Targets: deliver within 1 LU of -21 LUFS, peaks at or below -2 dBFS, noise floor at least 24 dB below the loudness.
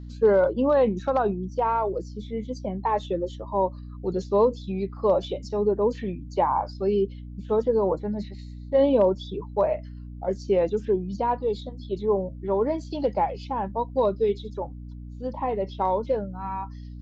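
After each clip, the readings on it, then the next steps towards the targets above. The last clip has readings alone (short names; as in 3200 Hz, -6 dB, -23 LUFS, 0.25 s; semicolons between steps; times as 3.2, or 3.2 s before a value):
hum 60 Hz; harmonics up to 300 Hz; hum level -36 dBFS; loudness -26.0 LUFS; peak -9.5 dBFS; loudness target -21.0 LUFS
-> de-hum 60 Hz, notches 5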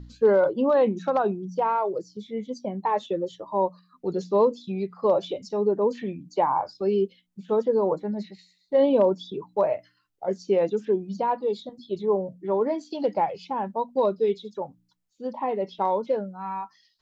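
hum none; loudness -26.0 LUFS; peak -10.0 dBFS; loudness target -21.0 LUFS
-> gain +5 dB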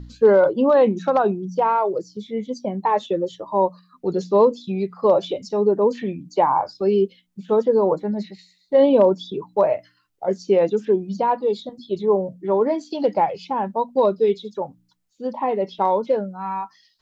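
loudness -21.0 LUFS; peak -5.0 dBFS; noise floor -64 dBFS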